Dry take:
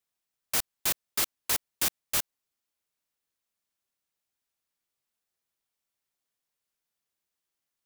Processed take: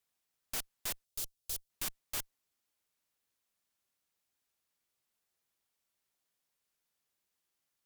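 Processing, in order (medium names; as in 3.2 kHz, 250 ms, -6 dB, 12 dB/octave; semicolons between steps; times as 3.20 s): valve stage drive 40 dB, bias 0.75; 1.04–1.70 s: graphic EQ 250/1000/2000 Hz -12/-12/-12 dB; trim +6 dB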